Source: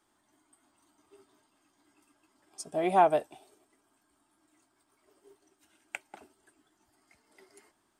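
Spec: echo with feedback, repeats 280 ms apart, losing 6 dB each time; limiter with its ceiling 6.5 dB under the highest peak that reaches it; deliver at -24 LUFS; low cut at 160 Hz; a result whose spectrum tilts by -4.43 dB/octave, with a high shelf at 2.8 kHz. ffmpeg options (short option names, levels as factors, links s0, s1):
-af "highpass=160,highshelf=f=2800:g=-5.5,alimiter=limit=0.112:level=0:latency=1,aecho=1:1:280|560|840|1120|1400|1680:0.501|0.251|0.125|0.0626|0.0313|0.0157,volume=2.99"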